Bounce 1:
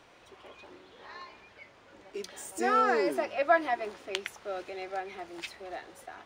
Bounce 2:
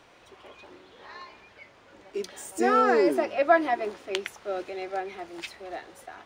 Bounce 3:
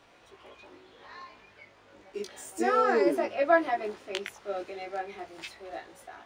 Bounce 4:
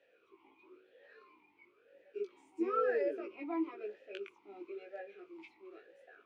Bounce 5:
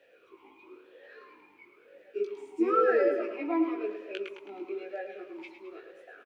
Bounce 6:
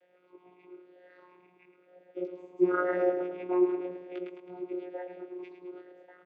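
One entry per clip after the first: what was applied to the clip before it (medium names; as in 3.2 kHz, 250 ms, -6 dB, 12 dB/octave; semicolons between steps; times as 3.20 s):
dynamic bell 310 Hz, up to +6 dB, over -43 dBFS, Q 0.77; trim +2 dB
chorus 0.32 Hz, delay 17.5 ms, depth 2.6 ms
talking filter e-u 1 Hz
feedback delay 107 ms, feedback 53%, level -9 dB; trim +8 dB
vocoder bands 16, saw 180 Hz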